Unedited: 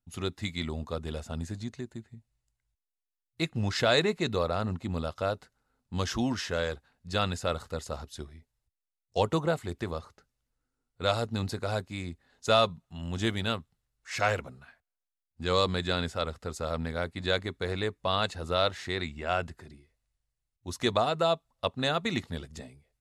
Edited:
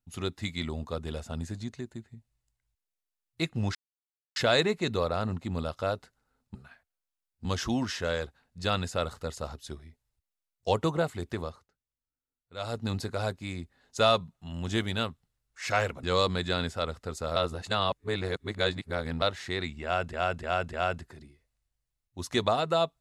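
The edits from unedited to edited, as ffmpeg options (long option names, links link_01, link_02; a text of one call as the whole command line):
ffmpeg -i in.wav -filter_complex "[0:a]asplit=12[link_01][link_02][link_03][link_04][link_05][link_06][link_07][link_08][link_09][link_10][link_11][link_12];[link_01]atrim=end=3.75,asetpts=PTS-STARTPTS,afade=type=out:start_time=3.746:duration=0.004:curve=hsin,apad=pad_dur=0.61[link_13];[link_02]atrim=start=3.75:end=5.942,asetpts=PTS-STARTPTS,afade=type=in:duration=0.004:curve=hsin[link_14];[link_03]atrim=start=14.518:end=15.422[link_15];[link_04]atrim=start=5.938:end=10.17,asetpts=PTS-STARTPTS,afade=type=out:start_time=3.972:duration=0.26:silence=0.188365[link_16];[link_05]atrim=start=10.17:end=11.05,asetpts=PTS-STARTPTS,volume=-14.5dB[link_17];[link_06]atrim=start=11.05:end=14.522,asetpts=PTS-STARTPTS,afade=type=in:duration=0.26:silence=0.188365[link_18];[link_07]atrim=start=15.418:end=16.752[link_19];[link_08]atrim=start=16.748:end=18.612,asetpts=PTS-STARTPTS,areverse[link_20];[link_09]atrim=start=18.608:end=19.522[link_21];[link_10]atrim=start=19.218:end=19.522[link_22];[link_11]atrim=start=19.218:end=19.522[link_23];[link_12]atrim=start=19.218[link_24];[link_13][link_14]concat=n=2:v=0:a=1[link_25];[link_25][link_15]acrossfade=duration=0.004:curve1=hsin:curve2=hsin[link_26];[link_16][link_17][link_18]concat=n=3:v=0:a=1[link_27];[link_26][link_27]acrossfade=duration=0.004:curve1=hsin:curve2=hsin[link_28];[link_28][link_19]acrossfade=duration=0.004:curve1=hsin:curve2=hsin[link_29];[link_29][link_20]acrossfade=duration=0.004:curve1=hsin:curve2=hsin[link_30];[link_30][link_21]acrossfade=duration=0.004:curve1=hsin:curve2=hsin[link_31];[link_31][link_22]acrossfade=duration=0.004:curve1=hsin:curve2=hsin[link_32];[link_32][link_23]acrossfade=duration=0.004:curve1=hsin:curve2=hsin[link_33];[link_33][link_24]acrossfade=duration=0.004:curve1=hsin:curve2=hsin" out.wav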